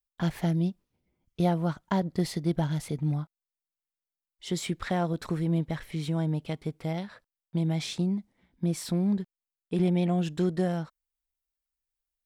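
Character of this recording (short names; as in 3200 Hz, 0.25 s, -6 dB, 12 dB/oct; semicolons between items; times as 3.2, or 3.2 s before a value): noise floor -93 dBFS; spectral tilt -7.0 dB/oct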